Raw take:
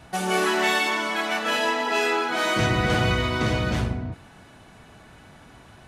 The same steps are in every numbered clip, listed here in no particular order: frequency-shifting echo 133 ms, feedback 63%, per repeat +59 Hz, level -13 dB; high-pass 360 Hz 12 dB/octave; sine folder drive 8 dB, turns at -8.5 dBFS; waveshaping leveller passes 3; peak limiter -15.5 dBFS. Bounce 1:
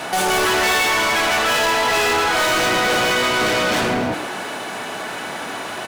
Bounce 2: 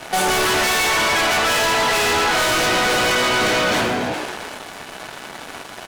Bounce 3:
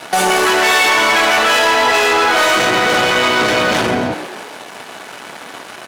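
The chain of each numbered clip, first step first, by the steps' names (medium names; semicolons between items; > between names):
high-pass > sine folder > peak limiter > waveshaping leveller > frequency-shifting echo; high-pass > frequency-shifting echo > waveshaping leveller > sine folder > peak limiter; waveshaping leveller > high-pass > peak limiter > sine folder > frequency-shifting echo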